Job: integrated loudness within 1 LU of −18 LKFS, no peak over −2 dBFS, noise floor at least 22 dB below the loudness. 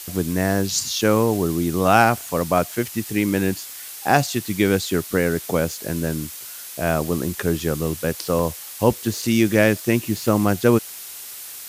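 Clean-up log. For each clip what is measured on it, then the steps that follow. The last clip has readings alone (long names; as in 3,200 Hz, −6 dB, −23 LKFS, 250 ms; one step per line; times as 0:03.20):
number of dropouts 2; longest dropout 2.5 ms; background noise floor −36 dBFS; target noise floor −43 dBFS; integrated loudness −21.0 LKFS; sample peak −1.0 dBFS; target loudness −18.0 LKFS
→ repair the gap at 0:08.39/0:10.28, 2.5 ms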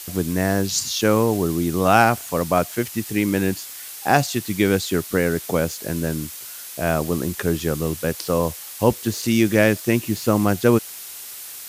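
number of dropouts 0; background noise floor −36 dBFS; target noise floor −43 dBFS
→ broadband denoise 7 dB, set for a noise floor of −36 dBFS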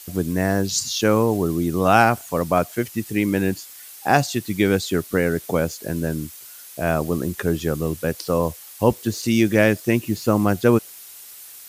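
background noise floor −42 dBFS; target noise floor −43 dBFS
→ broadband denoise 6 dB, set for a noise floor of −42 dBFS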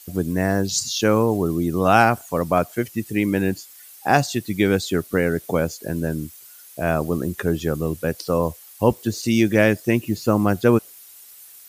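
background noise floor −45 dBFS; integrated loudness −21.5 LKFS; sample peak −1.5 dBFS; target loudness −18.0 LKFS
→ level +3.5 dB
brickwall limiter −2 dBFS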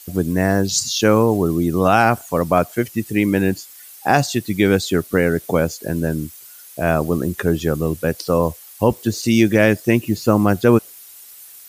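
integrated loudness −18.5 LKFS; sample peak −2.0 dBFS; background noise floor −42 dBFS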